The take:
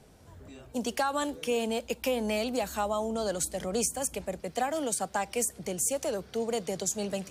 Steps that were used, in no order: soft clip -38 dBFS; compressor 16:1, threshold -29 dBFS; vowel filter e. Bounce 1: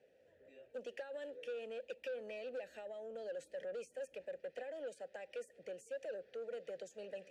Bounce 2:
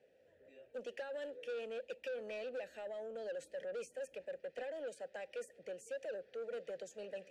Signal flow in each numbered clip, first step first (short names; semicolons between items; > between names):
compressor > vowel filter > soft clip; vowel filter > compressor > soft clip